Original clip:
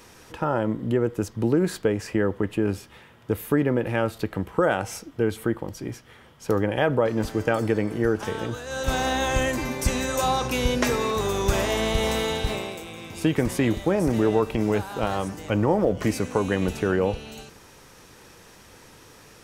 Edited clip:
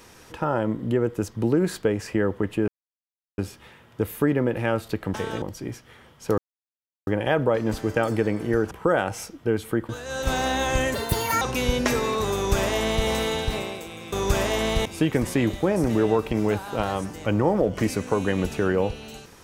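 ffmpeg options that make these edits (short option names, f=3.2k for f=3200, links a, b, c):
-filter_complex "[0:a]asplit=11[a][b][c][d][e][f][g][h][i][j][k];[a]atrim=end=2.68,asetpts=PTS-STARTPTS,afade=t=out:st=2.676:d=0.004:c=hsin,apad=pad_dur=0.7[l];[b]atrim=start=2.68:end=4.442,asetpts=PTS-STARTPTS,afade=t=in:d=0.004:c=hsin[m];[c]atrim=start=8.218:end=8.502[n];[d]atrim=start=5.618:end=6.58,asetpts=PTS-STARTPTS,afade=t=out:st=0.958:d=0.004:c=hsin,apad=pad_dur=0.69[o];[e]atrim=start=6.58:end=8.222,asetpts=PTS-STARTPTS,afade=t=in:d=0.004:c=hsin[p];[f]atrim=start=4.438:end=5.622[q];[g]atrim=start=8.498:end=9.554[r];[h]atrim=start=9.55:end=10.38,asetpts=PTS-STARTPTS,asetrate=77175,aresample=44100[s];[i]atrim=start=10.376:end=13.092[t];[j]atrim=start=11.308:end=12.042[u];[k]atrim=start=13.088[v];[l][m]concat=n=2:v=0:a=1[w];[w][n]acrossfade=d=0.004:c1=hsin:c2=hsin[x];[o][p]concat=n=2:v=0:a=1[y];[x][y]acrossfade=d=0.004:c1=hsin:c2=hsin[z];[z][q]acrossfade=d=0.004:c1=hsin:c2=hsin[aa];[aa][r]acrossfade=d=0.004:c1=hsin:c2=hsin[ab];[ab][s]acrossfade=d=0.004:c1=hsin:c2=hsin[ac];[ac][t]acrossfade=d=0.004:c1=hsin:c2=hsin[ad];[ad][u]acrossfade=d=0.004:c1=hsin:c2=hsin[ae];[ae][v]acrossfade=d=0.004:c1=hsin:c2=hsin"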